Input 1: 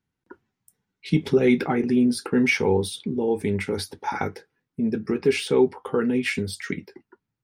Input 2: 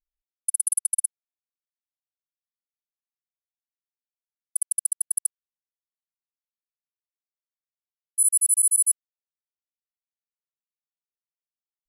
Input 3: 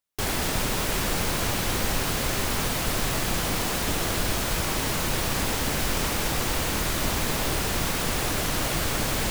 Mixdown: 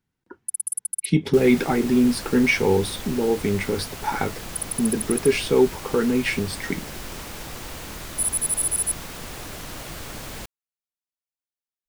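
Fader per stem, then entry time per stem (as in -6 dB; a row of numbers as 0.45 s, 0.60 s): +1.5 dB, -4.0 dB, -9.5 dB; 0.00 s, 0.00 s, 1.15 s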